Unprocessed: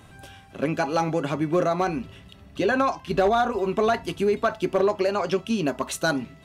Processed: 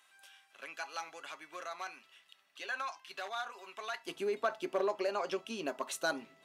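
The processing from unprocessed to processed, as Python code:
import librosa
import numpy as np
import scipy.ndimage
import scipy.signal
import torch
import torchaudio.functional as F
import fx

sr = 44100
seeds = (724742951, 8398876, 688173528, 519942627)

y = fx.highpass(x, sr, hz=fx.steps((0.0, 1400.0), (4.06, 400.0)), slope=12)
y = F.gain(torch.from_numpy(y), -9.0).numpy()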